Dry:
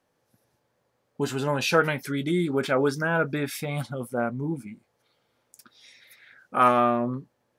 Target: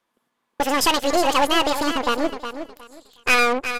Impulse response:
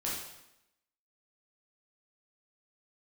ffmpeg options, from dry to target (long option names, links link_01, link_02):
-filter_complex "[0:a]asplit=2[link_01][link_02];[link_02]acompressor=threshold=-32dB:ratio=6,volume=1dB[link_03];[link_01][link_03]amix=inputs=2:normalize=0,asoftclip=type=tanh:threshold=-22dB,aeval=exprs='0.0794*(cos(1*acos(clip(val(0)/0.0794,-1,1)))-cos(1*PI/2))+0.0178*(cos(2*acos(clip(val(0)/0.0794,-1,1)))-cos(2*PI/2))+0.0224*(cos(3*acos(clip(val(0)/0.0794,-1,1)))-cos(3*PI/2))':channel_layout=same,aecho=1:1:728|1456|2184:0.335|0.0737|0.0162,asetrate=88200,aresample=44100,aresample=32000,aresample=44100,volume=7.5dB"